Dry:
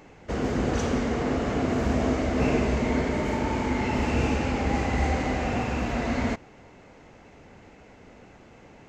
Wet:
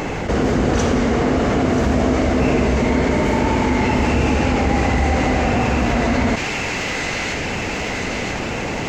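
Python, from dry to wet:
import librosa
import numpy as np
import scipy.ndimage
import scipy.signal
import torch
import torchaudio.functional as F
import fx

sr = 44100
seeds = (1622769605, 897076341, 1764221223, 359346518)

p1 = x + fx.echo_wet_highpass(x, sr, ms=984, feedback_pct=61, hz=2100.0, wet_db=-11, dry=0)
p2 = fx.env_flatten(p1, sr, amount_pct=70)
y = F.gain(torch.from_numpy(p2), 5.5).numpy()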